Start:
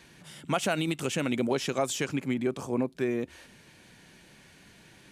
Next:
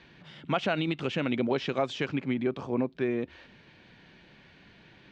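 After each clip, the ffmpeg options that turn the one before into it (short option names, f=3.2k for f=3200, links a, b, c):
-af "lowpass=f=4.1k:w=0.5412,lowpass=f=4.1k:w=1.3066"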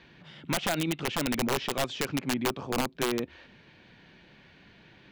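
-af "aeval=exprs='(mod(10.6*val(0)+1,2)-1)/10.6':c=same"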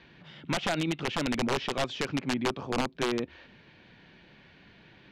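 -af "lowpass=6k"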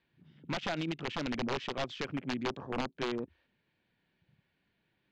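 -af "afwtdn=0.00891,volume=-5.5dB"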